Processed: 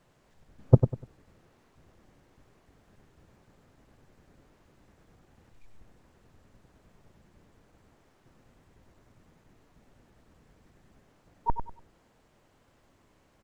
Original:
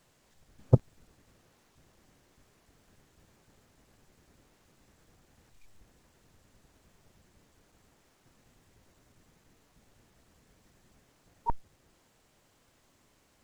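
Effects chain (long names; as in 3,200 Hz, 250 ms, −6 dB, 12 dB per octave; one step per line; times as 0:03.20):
high-shelf EQ 3,000 Hz −11.5 dB
on a send: repeating echo 98 ms, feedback 27%, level −8.5 dB
on the sum: level +3.5 dB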